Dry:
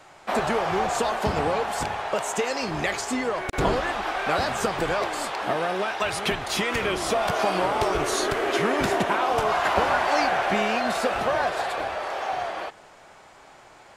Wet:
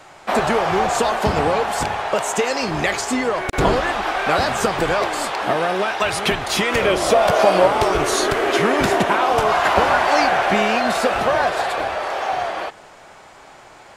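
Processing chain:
0:06.73–0:07.68: parametric band 560 Hz +8.5 dB 0.47 octaves
level +6 dB

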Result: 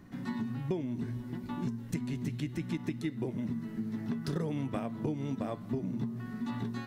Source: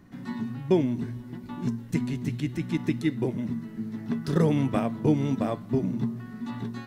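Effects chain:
downward compressor 6 to 1, threshold −31 dBFS, peak gain reduction 14 dB

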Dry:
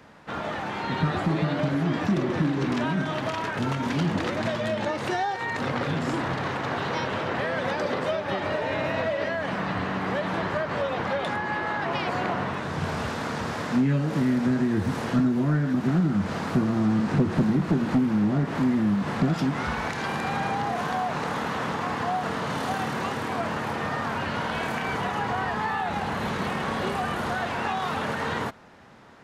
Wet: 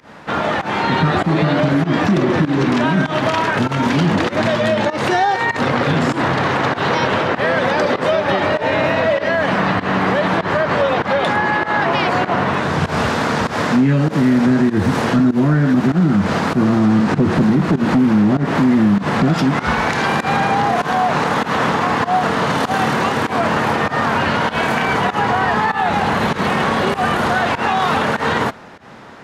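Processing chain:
high-shelf EQ 7,300 Hz −4 dB
fake sidechain pumping 98 BPM, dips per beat 1, −19 dB, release 135 ms
low-shelf EQ 87 Hz −6.5 dB
boost into a limiter +19.5 dB
level −6.5 dB

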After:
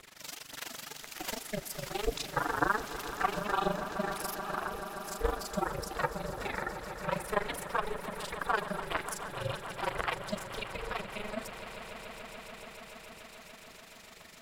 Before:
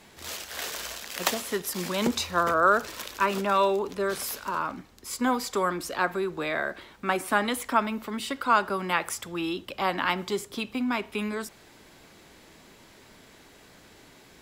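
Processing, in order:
amplitude modulation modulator 24 Hz, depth 85%
phase shifter 1.9 Hz, delay 2.9 ms, feedback 62%
ring modulation 210 Hz
on a send: echo that builds up and dies away 144 ms, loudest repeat 5, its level −15 dB
on the sum: one half of a high-frequency compander encoder only
level −3.5 dB

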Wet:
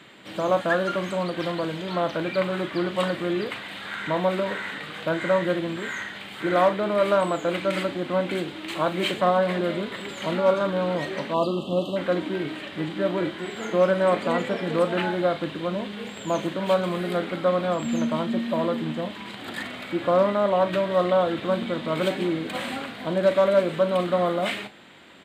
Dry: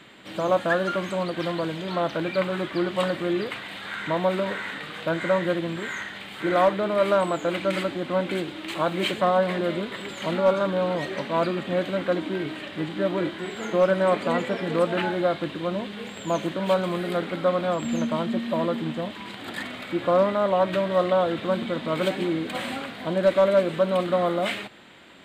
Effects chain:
high-pass filter 57 Hz
double-tracking delay 39 ms −12.5 dB
time-frequency box erased 0:11.34–0:11.96, 1,300–2,600 Hz

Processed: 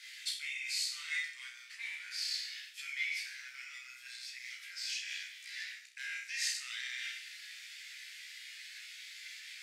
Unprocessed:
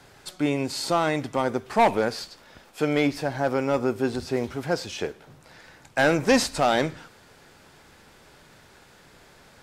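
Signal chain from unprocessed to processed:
flutter between parallel walls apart 5.5 metres, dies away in 0.68 s
on a send at −18 dB: convolution reverb RT60 0.40 s, pre-delay 77 ms
on the sum: dynamic equaliser 3,200 Hz, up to −5 dB, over −38 dBFS, Q 1
multi-voice chorus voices 4, 0.67 Hz, delay 16 ms, depth 1.3 ms
reversed playback
downward compressor 6 to 1, threshold −35 dBFS, peak gain reduction 19.5 dB
reversed playback
elliptic high-pass filter 2,000 Hz, stop band 60 dB
high-shelf EQ 6,200 Hz −10.5 dB
level +12 dB

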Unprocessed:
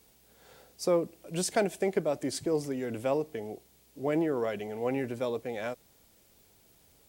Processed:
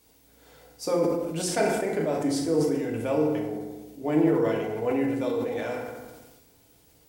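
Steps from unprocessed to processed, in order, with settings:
feedback delay network reverb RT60 1.2 s, low-frequency decay 1.2×, high-frequency decay 0.6×, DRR −2 dB
level that may fall only so fast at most 39 dB per second
level −1.5 dB

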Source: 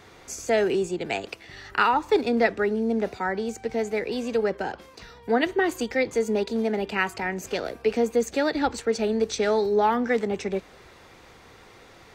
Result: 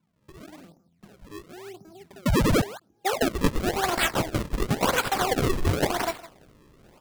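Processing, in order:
variable-slope delta modulation 32 kbit/s
noise gate −36 dBFS, range −12 dB
spectral tilt +3 dB per octave
downward compressor 2.5 to 1, threshold −25 dBFS, peak gain reduction 6 dB
low-pass filter sweep 110 Hz → 3,500 Hz, 0:04.85–0:06.28
sound drawn into the spectrogram rise, 0:03.91–0:04.54, 310–2,500 Hz −24 dBFS
double-tracking delay 34 ms −12.5 dB
slap from a distant wall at 47 metres, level −17 dB
wrong playback speed 45 rpm record played at 78 rpm
sample-and-hold swept by an LFO 34×, swing 160% 0.94 Hz
level +3.5 dB

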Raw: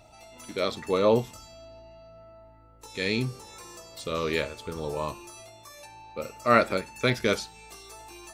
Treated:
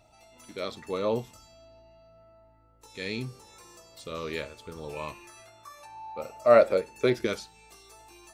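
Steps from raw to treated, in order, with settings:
0:04.88–0:07.25: parametric band 2,600 Hz → 320 Hz +14.5 dB 0.69 octaves
level −6.5 dB

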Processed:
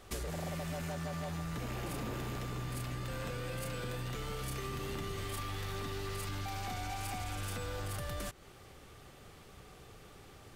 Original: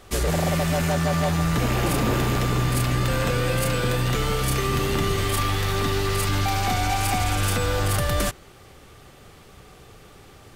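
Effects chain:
downward compressor 12 to 1, threshold −28 dBFS, peak gain reduction 10.5 dB
soft clipping −20.5 dBFS, distortion −28 dB
level −7 dB

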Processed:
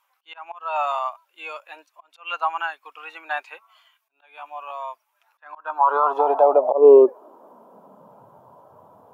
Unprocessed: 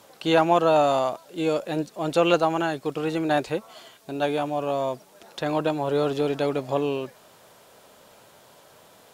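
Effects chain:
graphic EQ with 10 bands 250 Hz +4 dB, 1,000 Hz +10 dB, 2,000 Hz −9 dB, 4,000 Hz −9 dB, 8,000 Hz −7 dB
volume swells 294 ms
high-pass filter sweep 2,200 Hz → 85 Hz, 0:05.29–0:08.61
boost into a limiter +18 dB
every bin expanded away from the loudest bin 1.5 to 1
level −2.5 dB

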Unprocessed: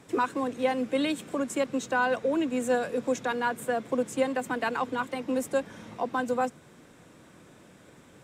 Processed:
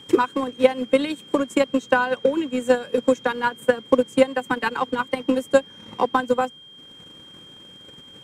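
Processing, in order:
Butterworth band-reject 670 Hz, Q 5.3
transient designer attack +12 dB, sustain −7 dB
steady tone 3,200 Hz −45 dBFS
level +1.5 dB

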